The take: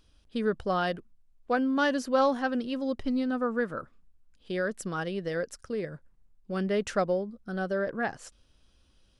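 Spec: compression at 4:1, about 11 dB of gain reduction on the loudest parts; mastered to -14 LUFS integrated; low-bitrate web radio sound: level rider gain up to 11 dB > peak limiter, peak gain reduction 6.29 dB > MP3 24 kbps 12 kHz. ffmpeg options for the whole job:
-af "acompressor=threshold=0.0224:ratio=4,dynaudnorm=m=3.55,alimiter=level_in=1.88:limit=0.0631:level=0:latency=1,volume=0.531,volume=18.8" -ar 12000 -c:a libmp3lame -b:a 24k

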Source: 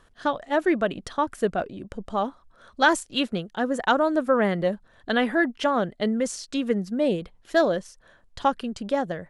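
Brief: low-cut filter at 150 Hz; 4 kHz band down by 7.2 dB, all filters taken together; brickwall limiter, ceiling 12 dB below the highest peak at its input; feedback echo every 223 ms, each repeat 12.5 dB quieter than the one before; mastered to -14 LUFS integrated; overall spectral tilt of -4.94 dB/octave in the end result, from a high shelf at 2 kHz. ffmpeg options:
-af "highpass=150,highshelf=f=2000:g=-5,equalizer=f=4000:t=o:g=-5,alimiter=limit=0.1:level=0:latency=1,aecho=1:1:223|446|669:0.237|0.0569|0.0137,volume=6.68"

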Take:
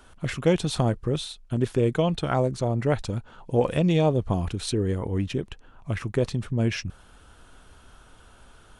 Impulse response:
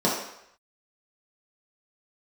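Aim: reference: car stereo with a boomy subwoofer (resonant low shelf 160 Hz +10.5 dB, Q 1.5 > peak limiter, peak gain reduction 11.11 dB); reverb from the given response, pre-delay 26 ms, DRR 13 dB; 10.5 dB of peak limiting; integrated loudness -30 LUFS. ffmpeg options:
-filter_complex "[0:a]alimiter=limit=0.112:level=0:latency=1,asplit=2[s0][s1];[1:a]atrim=start_sample=2205,adelay=26[s2];[s1][s2]afir=irnorm=-1:irlink=0,volume=0.0376[s3];[s0][s3]amix=inputs=2:normalize=0,lowshelf=f=160:t=q:w=1.5:g=10.5,volume=0.75,alimiter=limit=0.0794:level=0:latency=1"

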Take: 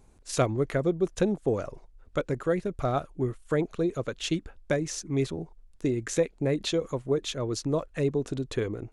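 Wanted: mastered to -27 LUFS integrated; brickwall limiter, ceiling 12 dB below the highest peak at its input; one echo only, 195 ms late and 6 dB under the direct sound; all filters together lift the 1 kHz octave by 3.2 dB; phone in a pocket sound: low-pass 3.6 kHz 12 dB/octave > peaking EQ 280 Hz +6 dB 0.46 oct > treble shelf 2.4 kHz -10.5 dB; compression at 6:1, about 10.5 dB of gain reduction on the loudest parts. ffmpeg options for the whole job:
-af "equalizer=f=1000:t=o:g=7,acompressor=threshold=0.0316:ratio=6,alimiter=level_in=1.88:limit=0.0631:level=0:latency=1,volume=0.531,lowpass=3600,equalizer=f=280:t=o:w=0.46:g=6,highshelf=f=2400:g=-10.5,aecho=1:1:195:0.501,volume=3.55"

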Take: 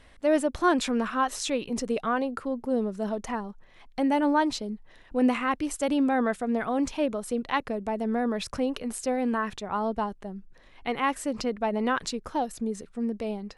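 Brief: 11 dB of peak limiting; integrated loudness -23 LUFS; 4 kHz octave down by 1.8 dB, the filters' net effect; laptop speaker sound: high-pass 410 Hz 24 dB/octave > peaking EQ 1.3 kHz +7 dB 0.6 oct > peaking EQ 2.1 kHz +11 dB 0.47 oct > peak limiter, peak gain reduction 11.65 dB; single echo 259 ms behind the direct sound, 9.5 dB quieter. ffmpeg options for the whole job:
-af "equalizer=f=4000:t=o:g=-4.5,alimiter=limit=0.0708:level=0:latency=1,highpass=f=410:w=0.5412,highpass=f=410:w=1.3066,equalizer=f=1300:t=o:w=0.6:g=7,equalizer=f=2100:t=o:w=0.47:g=11,aecho=1:1:259:0.335,volume=4.47,alimiter=limit=0.224:level=0:latency=1"

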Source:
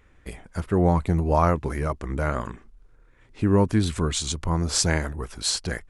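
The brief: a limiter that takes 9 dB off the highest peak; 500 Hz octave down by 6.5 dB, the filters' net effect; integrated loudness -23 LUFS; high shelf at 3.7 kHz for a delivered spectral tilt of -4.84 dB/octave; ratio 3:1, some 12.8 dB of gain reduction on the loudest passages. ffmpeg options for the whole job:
-af "equalizer=f=500:t=o:g=-8.5,highshelf=f=3700:g=-8.5,acompressor=threshold=0.0178:ratio=3,volume=6.31,alimiter=limit=0.266:level=0:latency=1"

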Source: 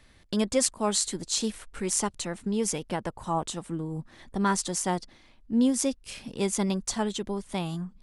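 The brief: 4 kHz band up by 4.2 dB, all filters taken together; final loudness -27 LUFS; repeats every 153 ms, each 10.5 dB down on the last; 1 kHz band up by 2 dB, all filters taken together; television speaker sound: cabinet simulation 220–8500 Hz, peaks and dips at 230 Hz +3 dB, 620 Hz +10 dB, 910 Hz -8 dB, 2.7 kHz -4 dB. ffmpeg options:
-af "highpass=f=220:w=0.5412,highpass=f=220:w=1.3066,equalizer=f=230:t=q:w=4:g=3,equalizer=f=620:t=q:w=4:g=10,equalizer=f=910:t=q:w=4:g=-8,equalizer=f=2700:t=q:w=4:g=-4,lowpass=f=8500:w=0.5412,lowpass=f=8500:w=1.3066,equalizer=f=1000:t=o:g=5.5,equalizer=f=4000:t=o:g=5.5,aecho=1:1:153|306|459:0.299|0.0896|0.0269"

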